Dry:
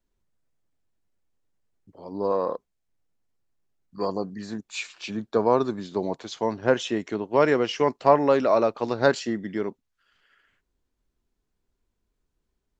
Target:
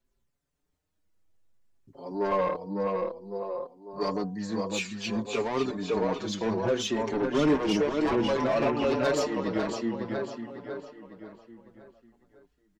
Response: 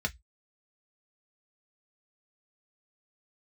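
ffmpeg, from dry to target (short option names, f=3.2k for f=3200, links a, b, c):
-filter_complex "[0:a]asettb=1/sr,asplit=3[a][b][c];[a]atrim=end=2.104[d];[b]atrim=start=2.1:end=2.55,asetpts=PTS-STARTPTS,afade=t=in:d=0.004:c=qsin,afade=t=out:st=0.446:d=0.004:c=qsin,aecho=1:1:5.6:0.79,atrim=end_sample=19845[e];[c]atrim=start=2.546[f];[d][e]acrossfade=d=0.004:c1=hsin:c2=qsin[g];[g][f]acrossfade=d=0.004:c1=qsin:c2=hsin,acrossover=split=2700[h][i];[h]alimiter=limit=-12.5dB:level=0:latency=1:release=200[j];[i]aphaser=in_gain=1:out_gain=1:delay=2.9:decay=0.46:speed=0.22:type=triangular[k];[j][k]amix=inputs=2:normalize=0,asettb=1/sr,asplit=3[l][m][n];[l]atrim=end=7.134[o];[m]atrim=start=7.13:end=7.76,asetpts=PTS-STARTPTS,afade=t=in:d=0.004:c=qsin,afade=t=out:st=0.626:d=0.004:c=qsin,lowshelf=f=410:t=q:w=1.5:g=10[p];[n]atrim=start=7.756[q];[o][p]acrossfade=d=0.004:c1=hsin:c2=qsin[r];[r][q]acrossfade=d=0.004:c1=qsin:c2=hsin,asplit=2[s][t];[t]adelay=552,lowpass=f=4.8k:p=1,volume=-4dB,asplit=2[u][v];[v]adelay=552,lowpass=f=4.8k:p=1,volume=0.45,asplit=2[w][x];[x]adelay=552,lowpass=f=4.8k:p=1,volume=0.45,asplit=2[y][z];[z]adelay=552,lowpass=f=4.8k:p=1,volume=0.45,asplit=2[aa][ab];[ab]adelay=552,lowpass=f=4.8k:p=1,volume=0.45,asplit=2[ac][ad];[ad]adelay=552,lowpass=f=4.8k:p=1,volume=0.45[ae];[s][u][w][y][aa][ac][ae]amix=inputs=7:normalize=0,asplit=2[af][ag];[ag]asoftclip=type=hard:threshold=-19.5dB,volume=-6dB[ah];[af][ah]amix=inputs=2:normalize=0,bandreject=f=245:t=h:w=4,bandreject=f=490:t=h:w=4,bandreject=f=735:t=h:w=4,bandreject=f=980:t=h:w=4,asoftclip=type=tanh:threshold=-17.5dB,asettb=1/sr,asplit=3[ai][aj][ak];[ai]atrim=end=8.554[al];[aj]atrim=start=8.55:end=9.04,asetpts=PTS-STARTPTS,afade=t=in:d=0.004:c=qsin,afade=t=out:st=0.486:d=0.004:c=qsin,equalizer=f=2.6k:w=6.2:g=10[am];[ak]atrim=start=9.036[an];[al][am]acrossfade=d=0.004:c1=hsin:c2=qsin[ao];[ao][an]acrossfade=d=0.004:c1=qsin:c2=hsin,asplit=2[ap][aq];[aq]adelay=5.5,afreqshift=0.59[ar];[ap][ar]amix=inputs=2:normalize=1"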